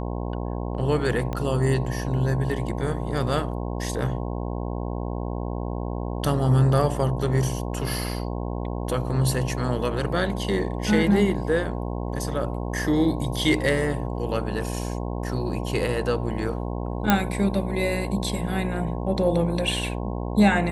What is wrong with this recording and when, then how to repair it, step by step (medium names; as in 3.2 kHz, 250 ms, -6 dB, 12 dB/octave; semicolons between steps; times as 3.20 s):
buzz 60 Hz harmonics 18 -29 dBFS
1.33 s: pop -17 dBFS
17.10 s: pop -3 dBFS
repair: de-click; de-hum 60 Hz, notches 18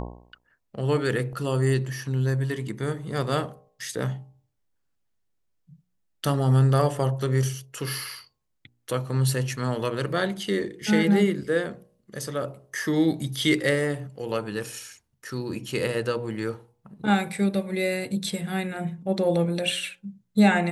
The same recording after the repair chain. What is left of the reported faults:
1.33 s: pop